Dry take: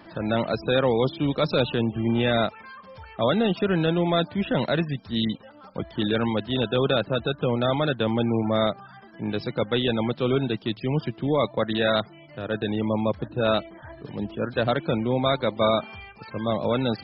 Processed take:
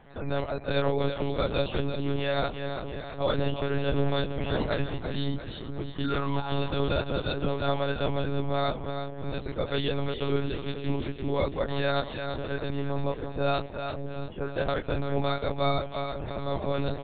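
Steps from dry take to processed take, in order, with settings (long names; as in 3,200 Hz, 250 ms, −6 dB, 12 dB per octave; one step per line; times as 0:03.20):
double-tracking delay 23 ms −3 dB
sound drawn into the spectrogram fall, 0:06.04–0:06.60, 700–1,500 Hz −29 dBFS
echo with a time of its own for lows and highs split 470 Hz, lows 539 ms, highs 340 ms, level −7 dB
one-pitch LPC vocoder at 8 kHz 140 Hz
level −6.5 dB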